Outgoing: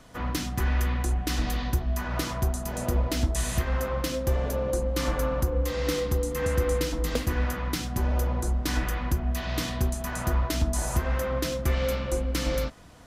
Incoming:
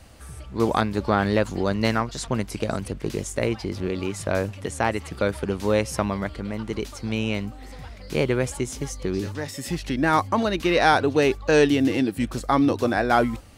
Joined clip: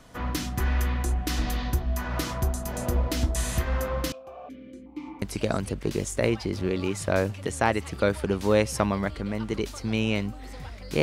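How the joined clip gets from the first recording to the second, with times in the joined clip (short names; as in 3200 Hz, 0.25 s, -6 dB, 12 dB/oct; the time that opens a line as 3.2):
outgoing
4.12–5.22 vowel sequencer 2.7 Hz
5.22 switch to incoming from 2.41 s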